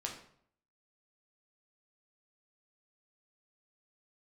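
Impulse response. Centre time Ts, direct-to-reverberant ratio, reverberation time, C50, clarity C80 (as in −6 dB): 24 ms, −0.5 dB, 0.60 s, 7.0 dB, 10.5 dB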